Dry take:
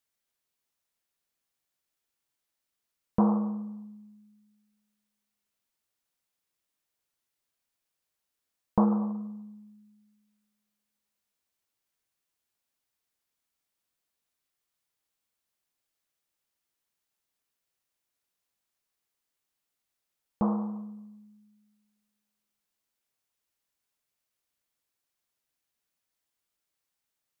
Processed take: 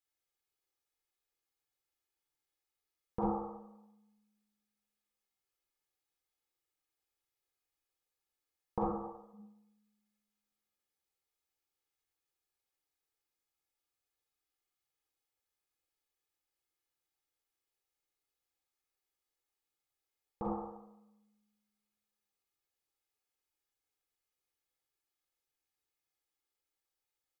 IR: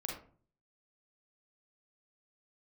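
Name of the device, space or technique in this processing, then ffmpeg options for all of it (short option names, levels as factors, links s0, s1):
microphone above a desk: -filter_complex "[0:a]asplit=3[s0][s1][s2];[s0]afade=t=out:st=8.83:d=0.02[s3];[s1]highpass=270,afade=t=in:st=8.83:d=0.02,afade=t=out:st=9.33:d=0.02[s4];[s2]afade=t=in:st=9.33:d=0.02[s5];[s3][s4][s5]amix=inputs=3:normalize=0,aecho=1:1:2.4:0.67[s6];[1:a]atrim=start_sample=2205[s7];[s6][s7]afir=irnorm=-1:irlink=0,volume=0.447"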